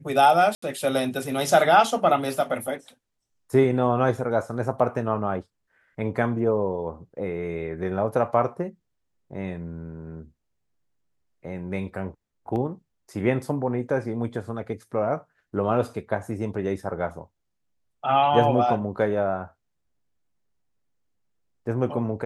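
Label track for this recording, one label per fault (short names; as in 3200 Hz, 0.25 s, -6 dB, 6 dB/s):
0.550000	0.620000	gap 74 ms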